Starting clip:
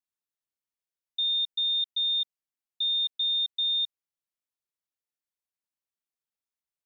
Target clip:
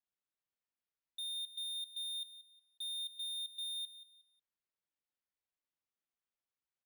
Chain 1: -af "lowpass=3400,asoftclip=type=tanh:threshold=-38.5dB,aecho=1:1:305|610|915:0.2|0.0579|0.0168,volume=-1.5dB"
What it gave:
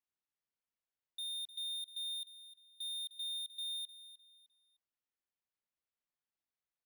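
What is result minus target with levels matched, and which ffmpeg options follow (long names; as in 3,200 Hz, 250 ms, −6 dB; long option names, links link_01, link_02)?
echo 124 ms late
-af "lowpass=3400,asoftclip=type=tanh:threshold=-38.5dB,aecho=1:1:181|362|543:0.2|0.0579|0.0168,volume=-1.5dB"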